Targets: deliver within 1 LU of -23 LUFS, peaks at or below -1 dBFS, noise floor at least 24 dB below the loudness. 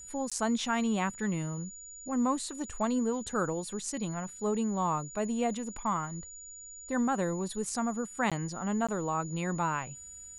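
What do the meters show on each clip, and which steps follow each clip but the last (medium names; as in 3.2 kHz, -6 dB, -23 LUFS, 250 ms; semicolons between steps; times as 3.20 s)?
dropouts 3; longest dropout 16 ms; steady tone 6.9 kHz; tone level -45 dBFS; loudness -32.5 LUFS; peak level -16.5 dBFS; loudness target -23.0 LUFS
-> interpolate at 0.30/8.30/8.87 s, 16 ms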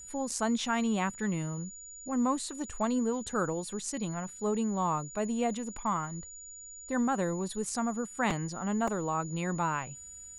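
dropouts 0; steady tone 6.9 kHz; tone level -45 dBFS
-> band-stop 6.9 kHz, Q 30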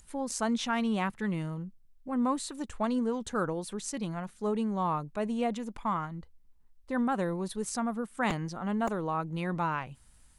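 steady tone not found; loudness -32.5 LUFS; peak level -17.0 dBFS; loudness target -23.0 LUFS
-> trim +9.5 dB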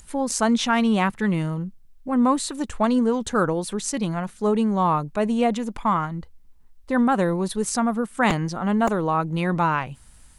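loudness -23.0 LUFS; peak level -7.5 dBFS; noise floor -50 dBFS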